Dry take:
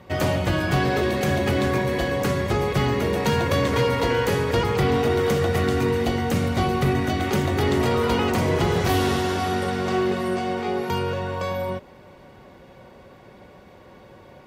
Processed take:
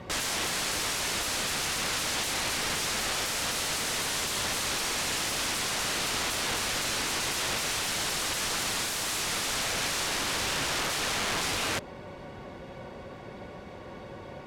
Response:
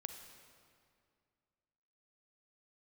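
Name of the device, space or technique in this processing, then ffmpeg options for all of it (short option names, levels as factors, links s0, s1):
overflowing digital effects unit: -af "aeval=exprs='(mod(26.6*val(0)+1,2)-1)/26.6':c=same,lowpass=9900,volume=1.58"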